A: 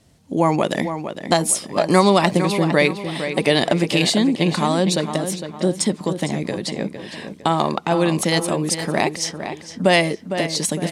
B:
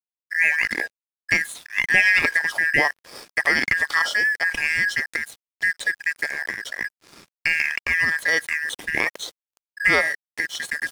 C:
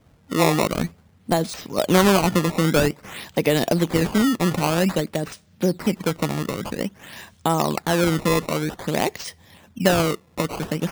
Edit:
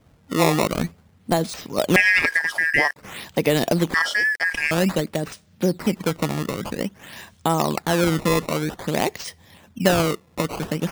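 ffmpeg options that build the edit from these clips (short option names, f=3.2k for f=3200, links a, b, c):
-filter_complex "[1:a]asplit=2[a][b];[2:a]asplit=3[c][d][e];[c]atrim=end=1.962[f];[a]atrim=start=1.958:end=2.962[g];[d]atrim=start=2.958:end=3.942[h];[b]atrim=start=3.938:end=4.712[i];[e]atrim=start=4.708[j];[f][g]acrossfade=d=0.004:c1=hsin:c2=hsin[k];[k][h]acrossfade=d=0.004:c1=hsin:c2=hsin[l];[l][i]acrossfade=d=0.004:c1=hsin:c2=hsin[m];[m][j]acrossfade=d=0.004:c1=hsin:c2=hsin"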